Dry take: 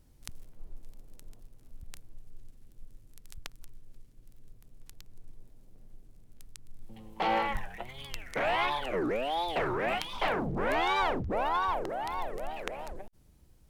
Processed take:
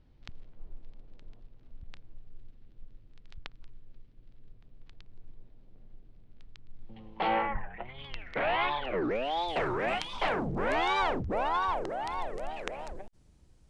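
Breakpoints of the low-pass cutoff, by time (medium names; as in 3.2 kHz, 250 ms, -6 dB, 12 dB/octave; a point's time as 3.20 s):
low-pass 24 dB/octave
7.26 s 4 kHz
7.55 s 1.8 kHz
8.08 s 3.9 kHz
8.89 s 3.9 kHz
9.55 s 9 kHz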